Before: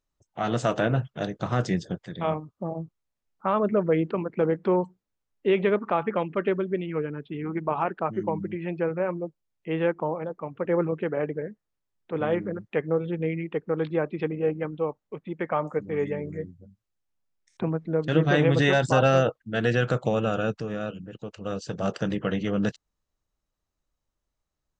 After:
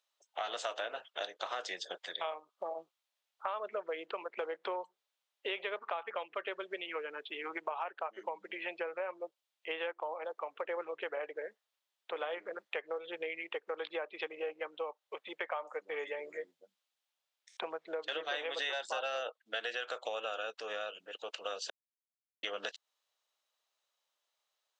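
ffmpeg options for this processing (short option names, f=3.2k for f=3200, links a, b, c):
-filter_complex "[0:a]asplit=3[a][b][c];[a]atrim=end=21.7,asetpts=PTS-STARTPTS,afade=t=out:st=21.696:d=0.004:c=hsin[d];[b]atrim=start=21.7:end=22.43,asetpts=PTS-STARTPTS,volume=0[e];[c]atrim=start=22.43,asetpts=PTS-STARTPTS,afade=t=in:d=0.004:c=hsin[f];[d][e][f]concat=n=3:v=0:a=1,highpass=f=550:w=0.5412,highpass=f=550:w=1.3066,equalizer=f=3.4k:w=1.5:g=9,acompressor=threshold=-38dB:ratio=5,volume=2dB"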